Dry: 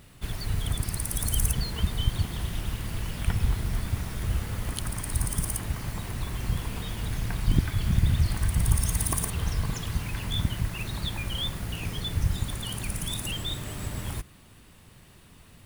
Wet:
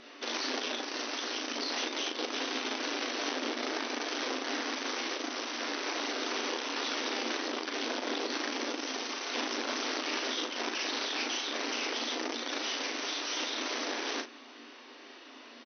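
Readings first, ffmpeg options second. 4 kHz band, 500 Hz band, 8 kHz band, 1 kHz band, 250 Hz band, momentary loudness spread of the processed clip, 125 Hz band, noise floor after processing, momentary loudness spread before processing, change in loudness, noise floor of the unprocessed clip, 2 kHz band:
+3.0 dB, +7.0 dB, -5.5 dB, +5.0 dB, -2.0 dB, 3 LU, under -40 dB, -51 dBFS, 8 LU, -3.5 dB, -53 dBFS, +5.5 dB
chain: -filter_complex "[0:a]asplit=2[a][b];[b]alimiter=limit=-17.5dB:level=0:latency=1:release=93,volume=-1.5dB[c];[a][c]amix=inputs=2:normalize=0,acompressor=threshold=-24dB:ratio=20,asplit=2[d][e];[e]adelay=38,volume=-9.5dB[f];[d][f]amix=inputs=2:normalize=0,aeval=exprs='(mod(22.4*val(0)+1,2)-1)/22.4':c=same,afftfilt=real='re*between(b*sr/4096,230,6200)':imag='im*between(b*sr/4096,230,6200)':win_size=4096:overlap=0.75,aecho=1:1:10|38:0.299|0.501"

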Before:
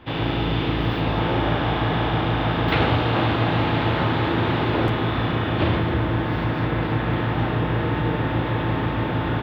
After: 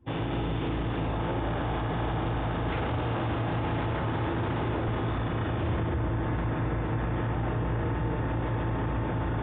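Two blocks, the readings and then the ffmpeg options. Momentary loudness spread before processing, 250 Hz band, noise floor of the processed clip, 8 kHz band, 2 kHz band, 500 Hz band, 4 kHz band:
3 LU, -8.0 dB, -30 dBFS, n/a, -11.0 dB, -8.0 dB, -14.0 dB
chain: -filter_complex "[0:a]asplit=2[a][b];[b]acrusher=bits=4:mix=0:aa=0.5,volume=-12dB[c];[a][c]amix=inputs=2:normalize=0,asubboost=boost=2:cutoff=100,afftdn=nr=20:nf=-39,highshelf=f=2.1k:g=-9,aresample=8000,aresample=44100,alimiter=limit=-16dB:level=0:latency=1:release=14,areverse,acompressor=mode=upward:threshold=-26dB:ratio=2.5,areverse,volume=-6dB"

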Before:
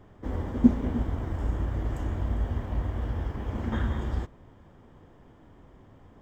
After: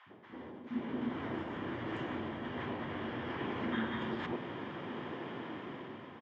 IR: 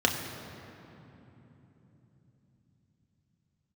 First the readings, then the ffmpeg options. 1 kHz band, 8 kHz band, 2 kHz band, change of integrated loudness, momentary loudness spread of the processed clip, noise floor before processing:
0.0 dB, n/a, +3.5 dB, -10.0 dB, 9 LU, -55 dBFS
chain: -filter_complex "[0:a]areverse,acompressor=threshold=-40dB:ratio=12,areverse,crystalizer=i=9:c=0,asplit=2[a][b];[b]alimiter=level_in=14.5dB:limit=-24dB:level=0:latency=1:release=28,volume=-14.5dB,volume=1dB[c];[a][c]amix=inputs=2:normalize=0,acrossover=split=220|930[d][e][f];[d]adelay=60[g];[e]adelay=100[h];[g][h][f]amix=inputs=3:normalize=0,dynaudnorm=f=260:g=7:m=11dB,highpass=f=140:w=0.5412,highpass=f=140:w=1.3066,equalizer=f=240:t=q:w=4:g=5,equalizer=f=350:t=q:w=4:g=6,equalizer=f=1k:t=q:w=4:g=4,lowpass=f=3k:w=0.5412,lowpass=f=3k:w=1.3066,volume=-6dB"

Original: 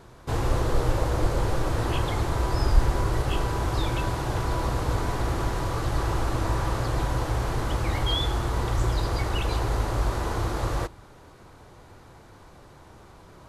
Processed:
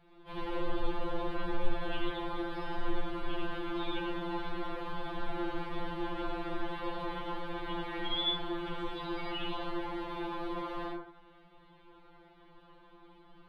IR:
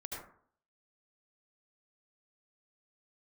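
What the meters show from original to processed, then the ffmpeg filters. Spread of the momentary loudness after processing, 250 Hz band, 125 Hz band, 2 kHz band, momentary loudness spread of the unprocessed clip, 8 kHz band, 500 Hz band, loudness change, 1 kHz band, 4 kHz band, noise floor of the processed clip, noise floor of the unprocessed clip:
4 LU, -5.0 dB, -22.0 dB, -7.0 dB, 3 LU, under -25 dB, -8.0 dB, -10.5 dB, -8.0 dB, -4.5 dB, -59 dBFS, -50 dBFS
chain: -filter_complex "[0:a]highshelf=f=4.6k:t=q:w=3:g=-13.5,bandreject=f=64.73:t=h:w=4,bandreject=f=129.46:t=h:w=4,bandreject=f=194.19:t=h:w=4,bandreject=f=258.92:t=h:w=4,bandreject=f=323.65:t=h:w=4,bandreject=f=388.38:t=h:w=4,bandreject=f=453.11:t=h:w=4,bandreject=f=517.84:t=h:w=4[a];[1:a]atrim=start_sample=2205[b];[a][b]afir=irnorm=-1:irlink=0,afftfilt=real='re*2.83*eq(mod(b,8),0)':imag='im*2.83*eq(mod(b,8),0)':win_size=2048:overlap=0.75,volume=-6dB"

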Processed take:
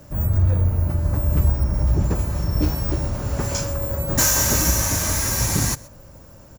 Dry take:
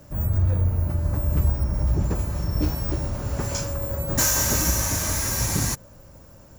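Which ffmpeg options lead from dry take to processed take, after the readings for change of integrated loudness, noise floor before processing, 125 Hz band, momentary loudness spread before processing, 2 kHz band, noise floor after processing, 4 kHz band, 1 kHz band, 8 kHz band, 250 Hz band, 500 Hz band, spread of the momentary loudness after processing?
+3.0 dB, -48 dBFS, +3.0 dB, 8 LU, +3.0 dB, -45 dBFS, +3.0 dB, +3.0 dB, +3.0 dB, +3.0 dB, +3.0 dB, 8 LU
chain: -af "aecho=1:1:128:0.075,volume=3dB"

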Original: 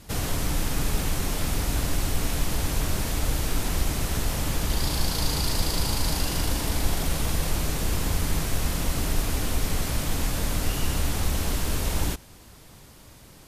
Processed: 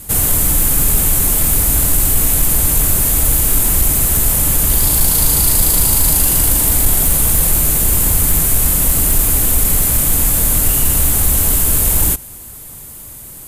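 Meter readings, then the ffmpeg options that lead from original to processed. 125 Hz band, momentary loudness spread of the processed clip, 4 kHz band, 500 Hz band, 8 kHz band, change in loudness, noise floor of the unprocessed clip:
+8.5 dB, 2 LU, +6.0 dB, +6.5 dB, +19.5 dB, +16.0 dB, -49 dBFS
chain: -af "aexciter=amount=6.6:drive=5.2:freq=7.4k,lowshelf=f=130:g=3.5,acontrast=79"

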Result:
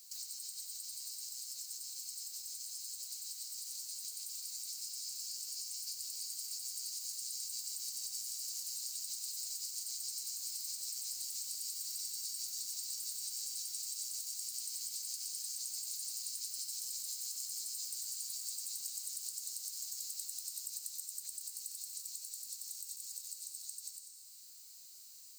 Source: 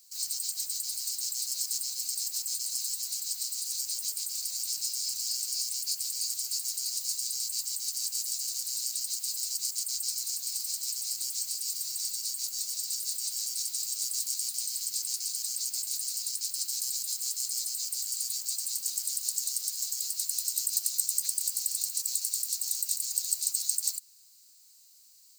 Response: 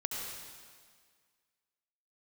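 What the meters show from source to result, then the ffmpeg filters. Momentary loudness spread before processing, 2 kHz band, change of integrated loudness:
3 LU, n/a, -10.0 dB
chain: -filter_complex "[0:a]acompressor=threshold=-46dB:ratio=8,asplit=2[a][b];[1:a]atrim=start_sample=2205,adelay=93[c];[b][c]afir=irnorm=-1:irlink=0,volume=-6dB[d];[a][d]amix=inputs=2:normalize=0,dynaudnorm=f=870:g=13:m=3.5dB,volume=2dB"

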